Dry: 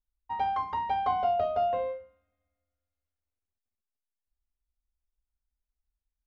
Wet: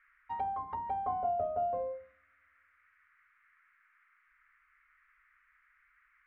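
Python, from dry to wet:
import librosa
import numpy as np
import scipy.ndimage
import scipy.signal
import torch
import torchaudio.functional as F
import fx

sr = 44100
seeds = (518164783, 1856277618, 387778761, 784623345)

y = fx.dmg_noise_band(x, sr, seeds[0], low_hz=1200.0, high_hz=2200.0, level_db=-65.0)
y = fx.env_lowpass_down(y, sr, base_hz=890.0, full_db=-28.0)
y = y * 10.0 ** (-4.0 / 20.0)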